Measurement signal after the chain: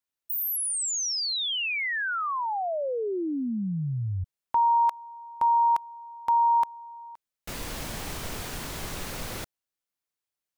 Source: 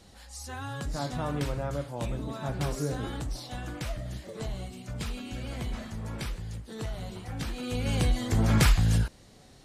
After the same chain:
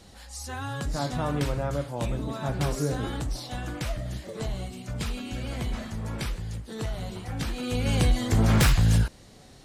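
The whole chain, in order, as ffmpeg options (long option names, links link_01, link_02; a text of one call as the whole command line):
ffmpeg -i in.wav -af "aeval=exprs='0.133*(abs(mod(val(0)/0.133+3,4)-2)-1)':channel_layout=same,volume=3.5dB" out.wav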